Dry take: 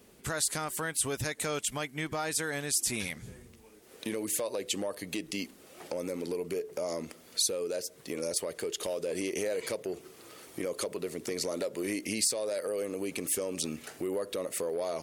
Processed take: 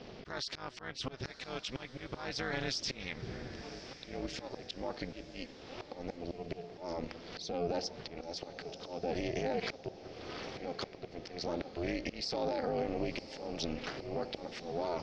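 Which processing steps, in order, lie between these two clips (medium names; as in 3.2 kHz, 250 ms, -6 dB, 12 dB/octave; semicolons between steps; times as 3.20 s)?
Chebyshev low-pass 5.4 kHz, order 5; AM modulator 260 Hz, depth 100%; slow attack 600 ms; in parallel at -3 dB: compression, threshold -53 dBFS, peak gain reduction 19 dB; on the sum: peak limiter -34 dBFS, peak gain reduction 10.5 dB; on a send: echo that smears into a reverb 1031 ms, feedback 50%, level -14 dB; on the sum: trim +9.5 dB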